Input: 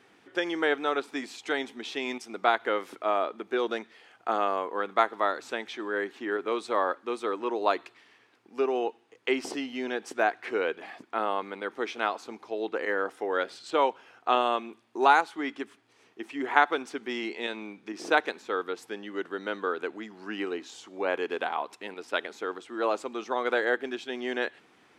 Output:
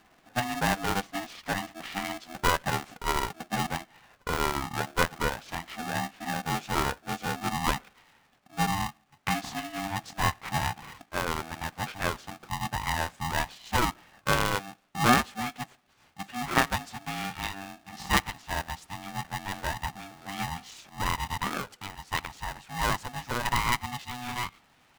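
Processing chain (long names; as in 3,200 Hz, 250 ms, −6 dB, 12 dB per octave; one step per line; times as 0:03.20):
pitch glide at a constant tempo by −6.5 semitones ending unshifted
ring modulator with a square carrier 490 Hz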